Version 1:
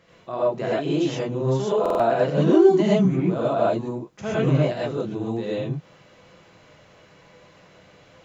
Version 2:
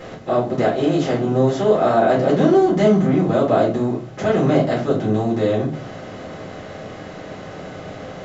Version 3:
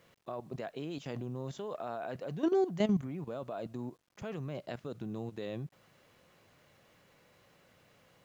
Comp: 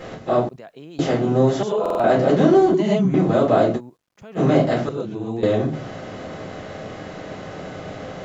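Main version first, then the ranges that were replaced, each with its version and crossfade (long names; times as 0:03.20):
2
0:00.49–0:00.99: punch in from 3
0:01.63–0:02.04: punch in from 1
0:02.74–0:03.14: punch in from 1
0:03.78–0:04.38: punch in from 3, crossfade 0.06 s
0:04.89–0:05.43: punch in from 1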